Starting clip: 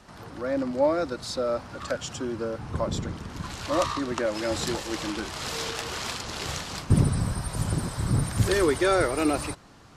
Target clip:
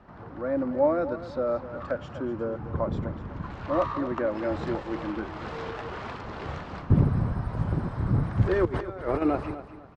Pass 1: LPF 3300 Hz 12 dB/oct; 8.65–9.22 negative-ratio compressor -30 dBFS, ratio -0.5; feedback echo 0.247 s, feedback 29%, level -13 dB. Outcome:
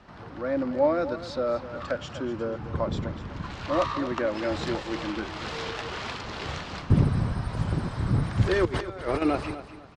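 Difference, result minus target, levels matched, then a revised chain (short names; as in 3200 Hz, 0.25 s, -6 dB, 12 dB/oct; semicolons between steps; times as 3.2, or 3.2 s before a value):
4000 Hz band +11.0 dB
LPF 1500 Hz 12 dB/oct; 8.65–9.22 negative-ratio compressor -30 dBFS, ratio -0.5; feedback echo 0.247 s, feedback 29%, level -13 dB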